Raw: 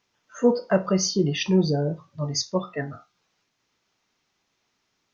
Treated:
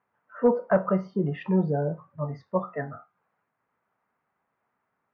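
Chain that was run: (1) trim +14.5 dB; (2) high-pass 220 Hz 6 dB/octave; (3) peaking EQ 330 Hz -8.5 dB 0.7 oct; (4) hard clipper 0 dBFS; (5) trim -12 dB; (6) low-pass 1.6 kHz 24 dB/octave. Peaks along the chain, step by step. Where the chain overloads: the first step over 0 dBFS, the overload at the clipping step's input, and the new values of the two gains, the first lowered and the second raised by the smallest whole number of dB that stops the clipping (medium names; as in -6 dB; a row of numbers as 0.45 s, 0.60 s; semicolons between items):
+6.0 dBFS, +6.5 dBFS, +5.0 dBFS, 0.0 dBFS, -12.0 dBFS, -11.0 dBFS; step 1, 5.0 dB; step 1 +9.5 dB, step 5 -7 dB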